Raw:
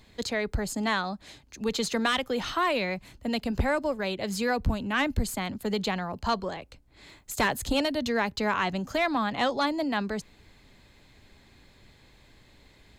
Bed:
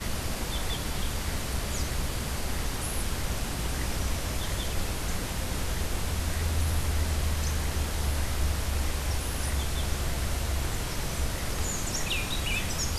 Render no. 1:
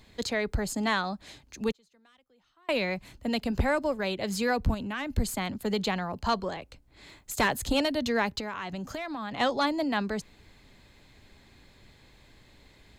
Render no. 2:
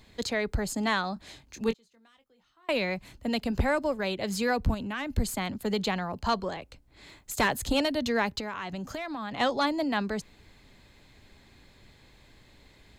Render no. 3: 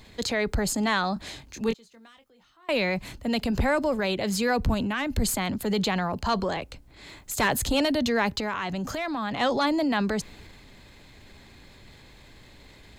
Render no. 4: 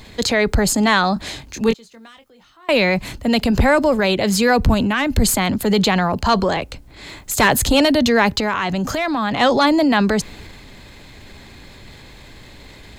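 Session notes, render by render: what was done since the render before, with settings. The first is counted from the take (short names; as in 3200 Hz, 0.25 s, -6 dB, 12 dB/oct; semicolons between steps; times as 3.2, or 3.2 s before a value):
1.71–2.69 flipped gate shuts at -33 dBFS, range -36 dB; 4.74–5.17 compressor 3:1, threshold -32 dBFS; 8.4–9.4 compressor, threshold -32 dBFS
1.14–2.7 doubler 22 ms -9 dB
transient shaper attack -3 dB, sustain +4 dB; in parallel at -0.5 dB: limiter -27 dBFS, peak gain reduction 10.5 dB
gain +9.5 dB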